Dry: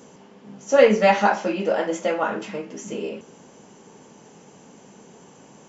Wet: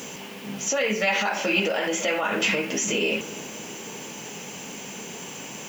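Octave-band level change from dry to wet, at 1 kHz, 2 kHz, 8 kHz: -6.5 dB, +3.0 dB, n/a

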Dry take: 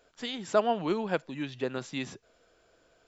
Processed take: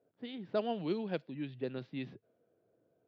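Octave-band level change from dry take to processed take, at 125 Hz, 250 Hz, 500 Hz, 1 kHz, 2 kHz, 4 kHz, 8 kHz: -3.0 dB, -4.5 dB, -7.5 dB, -11.5 dB, -11.0 dB, -10.5 dB, n/a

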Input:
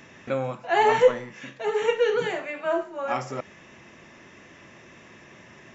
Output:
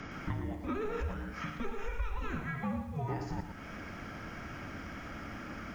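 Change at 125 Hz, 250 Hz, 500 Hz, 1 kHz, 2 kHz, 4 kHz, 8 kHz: +2.5 dB, -1.0 dB, -19.0 dB, -15.0 dB, -11.0 dB, -14.5 dB, n/a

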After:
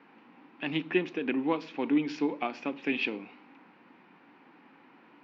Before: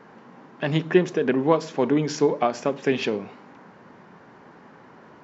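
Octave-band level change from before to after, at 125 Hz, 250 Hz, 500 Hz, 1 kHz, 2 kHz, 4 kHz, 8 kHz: -15.5 dB, -5.5 dB, -12.5 dB, -9.5 dB, -3.0 dB, -5.5 dB, n/a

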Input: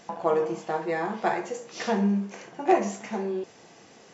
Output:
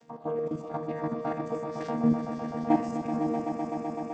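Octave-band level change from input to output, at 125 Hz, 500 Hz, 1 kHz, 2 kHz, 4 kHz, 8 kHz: -0.5 dB, -4.5 dB, -4.5 dB, -11.0 dB, under -10 dB, n/a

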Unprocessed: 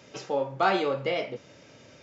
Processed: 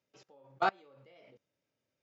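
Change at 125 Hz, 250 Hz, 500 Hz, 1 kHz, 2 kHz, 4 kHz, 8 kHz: -17.5 dB, -16.5 dB, -15.0 dB, -7.0 dB, -8.5 dB, -13.5 dB, n/a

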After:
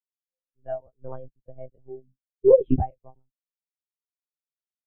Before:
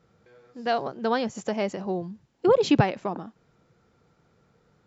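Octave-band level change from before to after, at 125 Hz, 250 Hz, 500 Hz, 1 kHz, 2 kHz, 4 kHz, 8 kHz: -2.5 dB, -5.0 dB, +2.5 dB, -9.5 dB, under -25 dB, under -35 dB, n/a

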